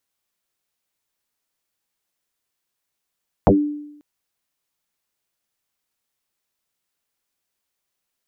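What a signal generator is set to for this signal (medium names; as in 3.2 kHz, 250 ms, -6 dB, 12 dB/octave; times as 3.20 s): FM tone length 0.54 s, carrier 295 Hz, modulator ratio 0.33, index 7.7, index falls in 0.18 s exponential, decay 0.82 s, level -7 dB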